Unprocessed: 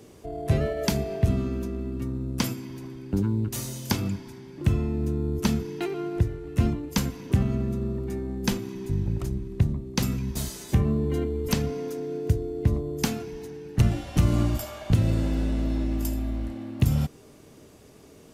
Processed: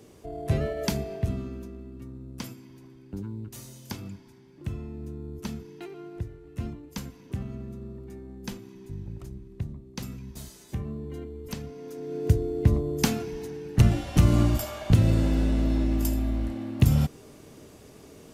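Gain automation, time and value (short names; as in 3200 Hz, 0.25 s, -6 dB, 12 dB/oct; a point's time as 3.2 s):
0.87 s -2.5 dB
1.88 s -11 dB
11.74 s -11 dB
12.3 s +2 dB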